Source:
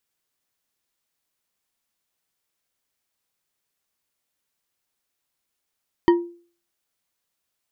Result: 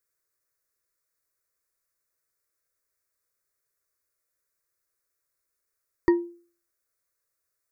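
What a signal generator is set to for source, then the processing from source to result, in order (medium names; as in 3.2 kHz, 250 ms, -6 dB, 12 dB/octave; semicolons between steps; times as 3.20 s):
glass hit bar, lowest mode 345 Hz, decay 0.43 s, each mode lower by 7 dB, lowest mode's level -9 dB
static phaser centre 830 Hz, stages 6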